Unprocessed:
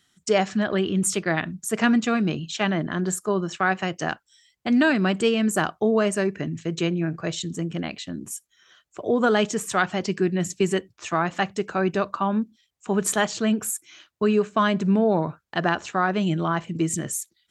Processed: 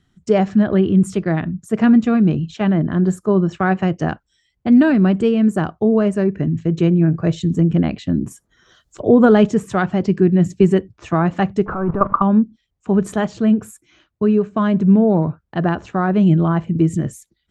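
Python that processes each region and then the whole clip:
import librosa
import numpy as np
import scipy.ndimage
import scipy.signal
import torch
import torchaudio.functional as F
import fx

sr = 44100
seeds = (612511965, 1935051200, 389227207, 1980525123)

y = fx.chain(x, sr, fx.peak_eq(hz=2500.0, db=-10.0, octaves=0.7),
    fx.band_squash(depth_pct=100), at=(8.31, 9.0))
y = fx.chain(y, sr, fx.zero_step(step_db=-28.5),
    fx.lowpass_res(hz=1200.0, q=4.1),
    fx.level_steps(step_db=14), at=(11.66, 12.22))
y = fx.tilt_eq(y, sr, slope=-4.0)
y = fx.rider(y, sr, range_db=10, speed_s=2.0)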